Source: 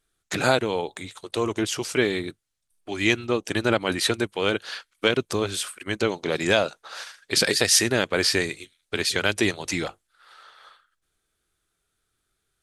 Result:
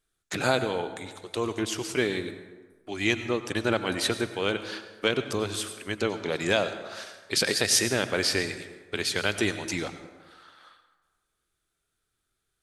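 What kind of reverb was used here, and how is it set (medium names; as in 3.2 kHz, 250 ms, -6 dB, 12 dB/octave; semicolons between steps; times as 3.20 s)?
plate-style reverb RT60 1.3 s, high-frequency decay 0.55×, pre-delay 80 ms, DRR 10.5 dB; trim -4 dB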